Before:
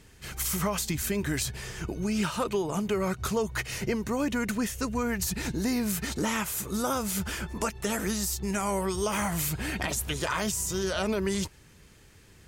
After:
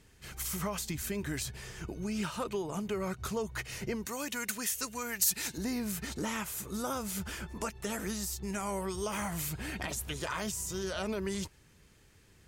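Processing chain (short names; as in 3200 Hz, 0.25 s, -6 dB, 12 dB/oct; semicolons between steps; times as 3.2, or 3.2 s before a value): 4.05–5.58 tilt +3.5 dB/oct; gain -6.5 dB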